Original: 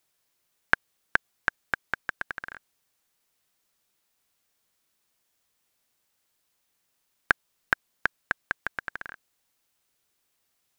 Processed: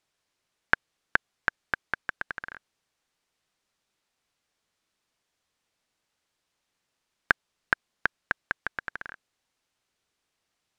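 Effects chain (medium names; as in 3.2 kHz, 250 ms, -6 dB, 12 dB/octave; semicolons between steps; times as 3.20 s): distance through air 62 m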